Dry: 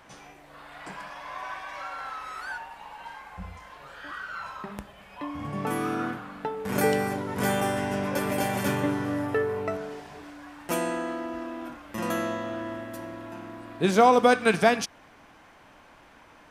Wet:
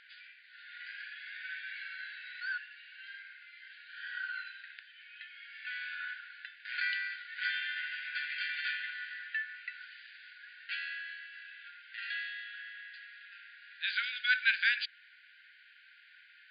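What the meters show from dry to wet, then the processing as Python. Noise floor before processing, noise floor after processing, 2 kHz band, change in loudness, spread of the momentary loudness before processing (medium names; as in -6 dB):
-54 dBFS, -60 dBFS, 0.0 dB, -8.5 dB, 20 LU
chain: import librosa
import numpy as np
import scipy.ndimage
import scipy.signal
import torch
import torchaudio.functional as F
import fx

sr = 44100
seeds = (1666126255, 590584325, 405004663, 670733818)

y = fx.brickwall_bandpass(x, sr, low_hz=1400.0, high_hz=4900.0)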